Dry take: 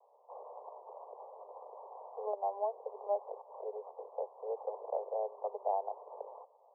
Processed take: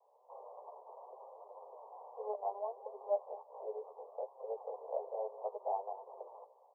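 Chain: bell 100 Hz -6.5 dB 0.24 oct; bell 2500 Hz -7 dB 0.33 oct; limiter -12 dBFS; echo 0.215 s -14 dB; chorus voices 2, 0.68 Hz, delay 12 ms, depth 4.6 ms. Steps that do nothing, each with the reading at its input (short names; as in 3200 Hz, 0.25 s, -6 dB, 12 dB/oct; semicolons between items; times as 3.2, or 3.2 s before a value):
bell 100 Hz: input band starts at 360 Hz; bell 2500 Hz: input band ends at 1100 Hz; limiter -12 dBFS: input peak -21.5 dBFS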